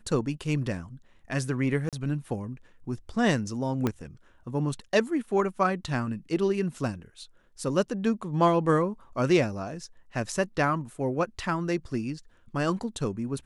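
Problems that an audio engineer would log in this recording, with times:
1.89–1.93 s: dropout 37 ms
3.87 s: pop -13 dBFS

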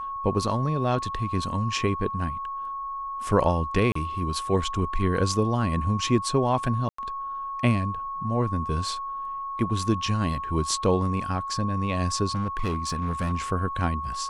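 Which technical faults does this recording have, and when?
whine 1.1 kHz -30 dBFS
3.92–3.95 s: dropout 34 ms
6.89–6.98 s: dropout 94 ms
12.34–13.33 s: clipped -22 dBFS

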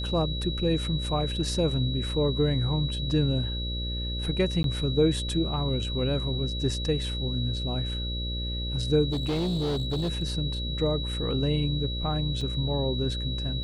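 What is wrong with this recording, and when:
buzz 60 Hz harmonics 10 -32 dBFS
whine 3.9 kHz -34 dBFS
4.63–4.64 s: dropout 12 ms
9.11–10.22 s: clipped -24 dBFS
12.41 s: dropout 3.3 ms

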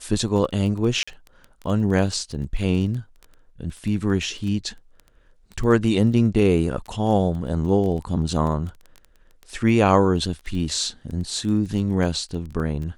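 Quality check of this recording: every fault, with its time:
crackle 11 per s -29 dBFS
1.03–1.07 s: dropout 45 ms

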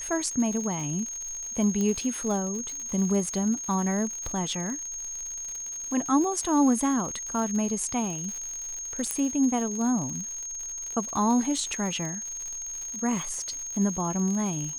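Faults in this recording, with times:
crackle 120 per s -33 dBFS
whine 6.5 kHz -33 dBFS
1.81 s: pop -17 dBFS
9.11 s: pop -11 dBFS

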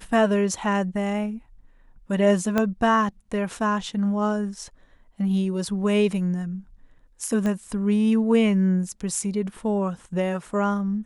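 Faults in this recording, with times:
2.58 s: pop -9 dBFS
7.46 s: pop -16 dBFS

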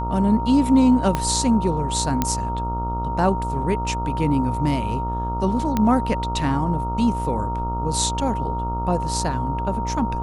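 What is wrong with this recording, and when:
buzz 60 Hz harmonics 23 -27 dBFS
whine 930 Hz -26 dBFS
1.15 s: pop -8 dBFS
2.22 s: pop -5 dBFS
5.77 s: pop -8 dBFS

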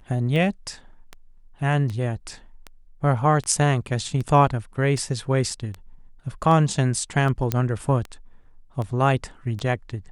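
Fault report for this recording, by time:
tick 78 rpm
7.52 s: pop -7 dBFS

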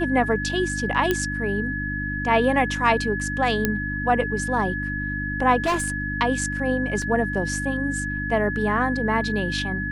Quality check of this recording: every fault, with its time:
hum 50 Hz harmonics 6 -30 dBFS
whine 1.7 kHz -28 dBFS
1.11 s: pop -8 dBFS
3.65 s: pop -6 dBFS
5.62–6.18 s: clipped -18.5 dBFS
7.02 s: dropout 2.1 ms

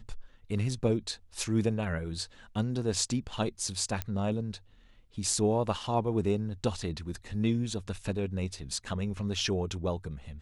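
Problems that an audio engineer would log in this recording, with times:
4.02 s: pop -16 dBFS

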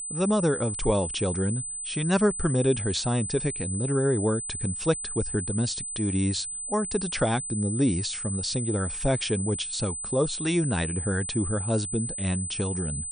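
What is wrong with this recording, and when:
whine 8.1 kHz -32 dBFS

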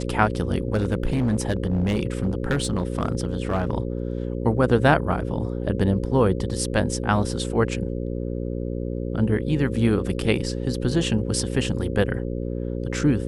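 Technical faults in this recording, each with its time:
buzz 60 Hz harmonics 9 -28 dBFS
0.73–3.75 s: clipped -17 dBFS

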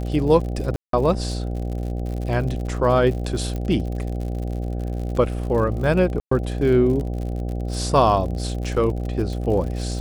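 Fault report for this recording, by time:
buzz 60 Hz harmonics 13 -26 dBFS
crackle 76 per s -30 dBFS
0.76–0.93 s: dropout 173 ms
3.56 s: pop -17 dBFS
6.20–6.31 s: dropout 114 ms

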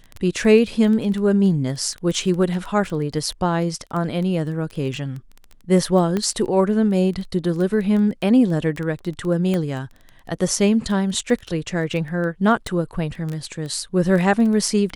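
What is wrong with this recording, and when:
crackle 11 per s -25 dBFS
6.17 s: pop -11 dBFS
9.54 s: pop -12 dBFS
12.67 s: pop -14 dBFS

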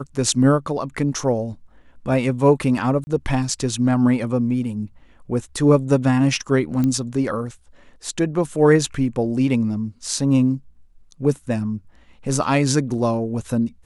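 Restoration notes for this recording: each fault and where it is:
3.04–3.07 s: dropout 30 ms
6.84 s: pop -11 dBFS

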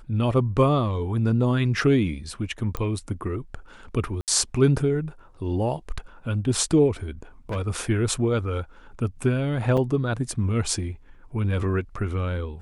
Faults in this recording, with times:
2.77 s: pop -15 dBFS
4.21–4.28 s: dropout 68 ms
7.49–7.57 s: clipped -24.5 dBFS
9.77–9.78 s: dropout 5.5 ms

